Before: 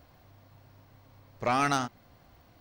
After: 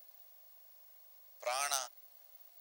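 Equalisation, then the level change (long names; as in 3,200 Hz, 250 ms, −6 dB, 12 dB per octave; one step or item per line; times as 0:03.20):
high-pass with resonance 610 Hz, resonance Q 4.9
first difference
high-shelf EQ 5,300 Hz +8 dB
0.0 dB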